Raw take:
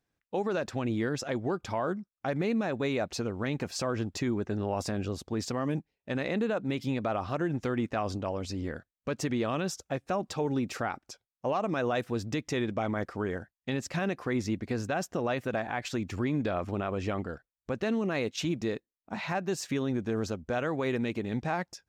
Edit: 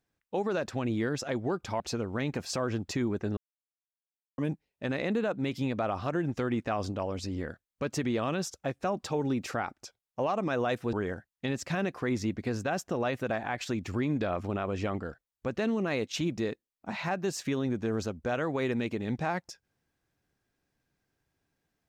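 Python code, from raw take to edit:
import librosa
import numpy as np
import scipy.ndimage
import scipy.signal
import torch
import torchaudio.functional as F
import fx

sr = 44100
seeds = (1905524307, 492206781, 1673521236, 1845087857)

y = fx.edit(x, sr, fx.cut(start_s=1.8, length_s=1.26),
    fx.silence(start_s=4.63, length_s=1.01),
    fx.cut(start_s=12.19, length_s=0.98), tone=tone)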